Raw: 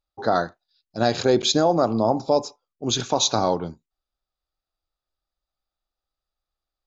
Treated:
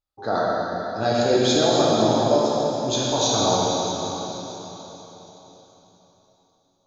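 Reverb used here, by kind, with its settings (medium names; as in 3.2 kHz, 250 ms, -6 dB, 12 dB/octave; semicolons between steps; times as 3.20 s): plate-style reverb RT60 4.1 s, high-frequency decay 1×, DRR -7 dB; trim -6 dB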